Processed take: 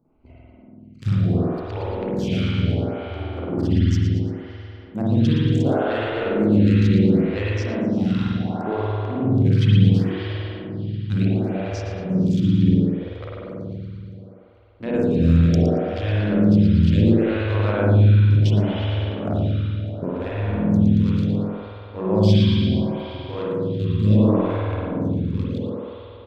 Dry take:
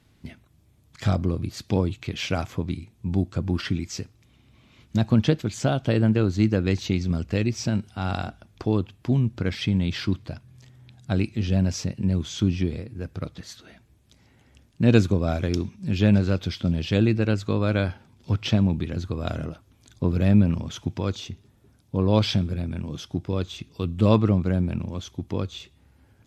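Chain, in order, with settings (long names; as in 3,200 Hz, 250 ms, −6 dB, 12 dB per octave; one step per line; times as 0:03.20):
adaptive Wiener filter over 25 samples
brickwall limiter −12 dBFS, peak gain reduction 10 dB
repeating echo 115 ms, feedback 54%, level −10 dB
spring reverb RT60 3.4 s, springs 48 ms, chirp 70 ms, DRR −8.5 dB
phaser with staggered stages 0.7 Hz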